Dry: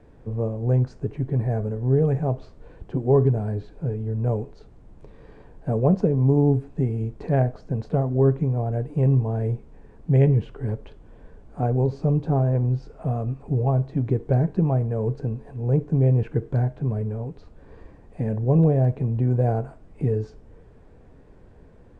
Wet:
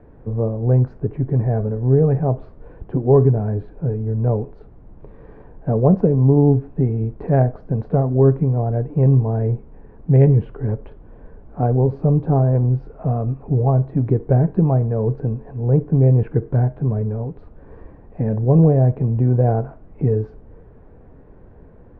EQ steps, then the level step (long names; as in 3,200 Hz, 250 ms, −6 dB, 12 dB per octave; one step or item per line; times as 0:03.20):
low-pass filter 1,600 Hz 12 dB per octave
+5.0 dB